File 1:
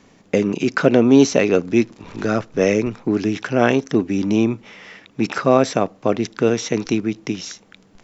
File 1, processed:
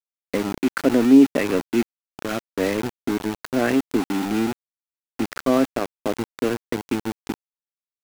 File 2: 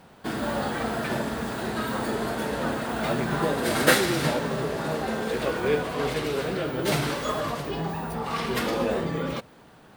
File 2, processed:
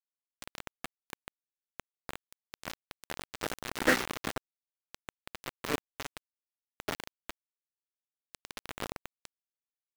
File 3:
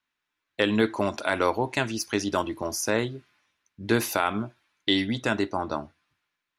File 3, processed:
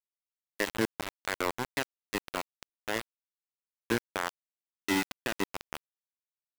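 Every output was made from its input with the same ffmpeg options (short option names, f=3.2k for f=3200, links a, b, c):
-af "highpass=f=120:w=0.5412,highpass=f=120:w=1.3066,equalizer=f=150:t=q:w=4:g=-7,equalizer=f=270:t=q:w=4:g=9,equalizer=f=1.9k:t=q:w=4:g=6,lowpass=f=2.7k:w=0.5412,lowpass=f=2.7k:w=1.3066,aeval=exprs='val(0)*gte(abs(val(0)),0.15)':c=same,volume=-7dB"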